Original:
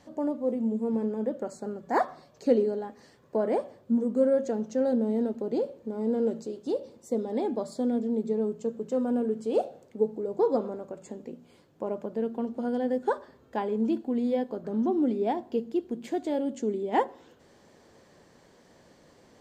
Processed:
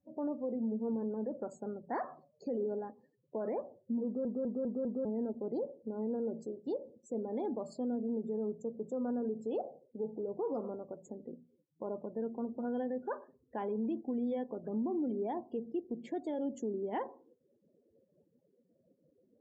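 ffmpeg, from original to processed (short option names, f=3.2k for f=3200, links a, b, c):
-filter_complex "[0:a]asplit=6[a][b][c][d][e][f];[a]atrim=end=4.252[g];[b]atrim=start=4.048:end=4.252[h];[c]atrim=start=4.048:end=4.252[i];[d]atrim=start=4.048:end=4.252[j];[e]atrim=start=4.048:end=4.252[k];[f]atrim=start=5.048[l];[g][h]acrossfade=d=0.004:c1=hsin:c2=hsin[m];[m][i]acrossfade=d=0.004:c1=hsin:c2=hsin[n];[n][j]acrossfade=d=0.004:c1=hsin:c2=hsin[o];[o][k]acrossfade=d=0.004:c1=hsin:c2=hsin[p];[p][l]acrossfade=d=0.004:c1=hsin:c2=hsin,alimiter=limit=-23dB:level=0:latency=1:release=41,afftdn=nr=35:nf=-47,volume=-5.5dB"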